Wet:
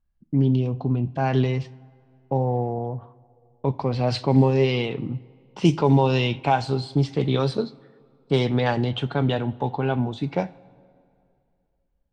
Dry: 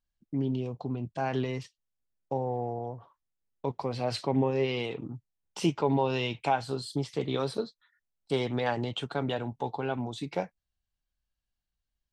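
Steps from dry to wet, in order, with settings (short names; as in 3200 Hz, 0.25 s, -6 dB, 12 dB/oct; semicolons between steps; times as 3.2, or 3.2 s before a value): two-slope reverb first 0.42 s, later 2.5 s, from -14 dB, DRR 14.5 dB; low-pass opened by the level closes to 1600 Hz, open at -18.5 dBFS; tone controls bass +7 dB, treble +7 dB; gain +5.5 dB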